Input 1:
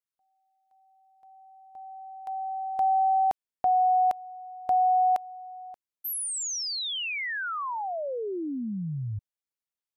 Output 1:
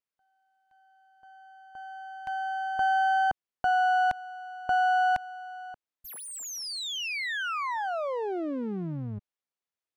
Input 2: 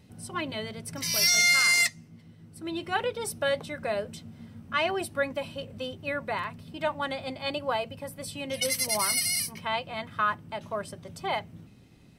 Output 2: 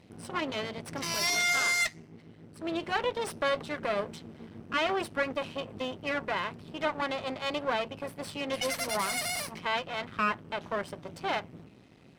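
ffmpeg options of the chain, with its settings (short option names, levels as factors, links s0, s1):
-filter_complex "[0:a]aeval=exprs='max(val(0),0)':c=same,highpass=f=170:p=1,aemphasis=mode=reproduction:type=50kf,asplit=2[s0][s1];[s1]alimiter=level_in=1.68:limit=0.0631:level=0:latency=1:release=56,volume=0.596,volume=1.19[s2];[s0][s2]amix=inputs=2:normalize=0"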